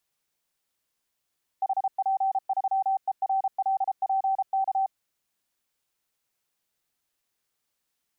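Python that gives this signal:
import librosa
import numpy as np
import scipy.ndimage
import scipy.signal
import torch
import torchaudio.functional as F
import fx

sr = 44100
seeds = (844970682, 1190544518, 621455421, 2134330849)

y = fx.morse(sr, text='HP3ERLPK', wpm=33, hz=773.0, level_db=-21.5)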